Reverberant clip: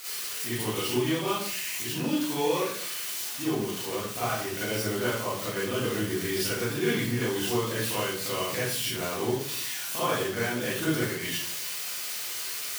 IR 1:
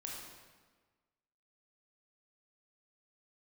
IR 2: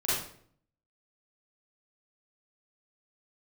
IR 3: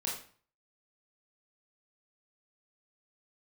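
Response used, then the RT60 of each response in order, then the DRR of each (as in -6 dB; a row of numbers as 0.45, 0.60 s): 2; 1.4, 0.60, 0.45 s; -2.5, -10.5, -4.0 dB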